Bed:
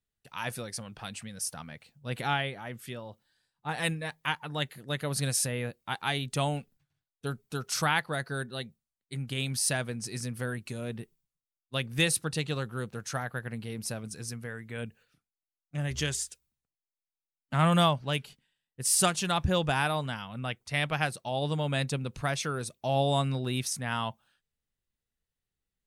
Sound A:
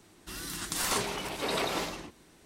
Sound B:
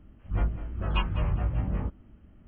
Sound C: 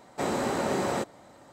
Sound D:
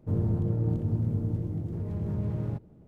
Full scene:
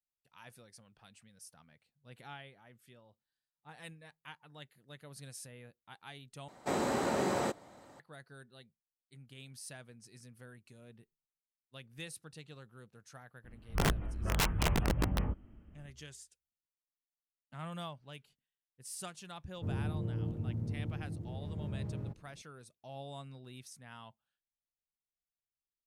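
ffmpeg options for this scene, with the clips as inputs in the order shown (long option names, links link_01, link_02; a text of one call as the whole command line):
ffmpeg -i bed.wav -i cue0.wav -i cue1.wav -i cue2.wav -i cue3.wav -filter_complex "[0:a]volume=-19.5dB[link_01];[2:a]aeval=exprs='(mod(10*val(0)+1,2)-1)/10':channel_layout=same[link_02];[link_01]asplit=2[link_03][link_04];[link_03]atrim=end=6.484[link_05];[3:a]atrim=end=1.52,asetpts=PTS-STARTPTS,volume=-4dB[link_06];[link_04]atrim=start=7.996[link_07];[link_02]atrim=end=2.47,asetpts=PTS-STARTPTS,volume=-3.5dB,afade=type=in:duration=0.004:curve=hsin,afade=type=out:start_time=2.466:duration=0.004:curve=hsin,adelay=13440[link_08];[4:a]atrim=end=2.87,asetpts=PTS-STARTPTS,volume=-9dB,afade=type=in:duration=0.004:curve=hsin,afade=type=out:start_time=2.866:duration=0.004:curve=hsin,adelay=19550[link_09];[link_05][link_06]acrossfade=duration=0.004:curve1=hsin:curve2=hsin[link_10];[link_10][link_07]acrossfade=duration=0.004:curve1=hsin:curve2=hsin[link_11];[link_11][link_08][link_09]amix=inputs=3:normalize=0" out.wav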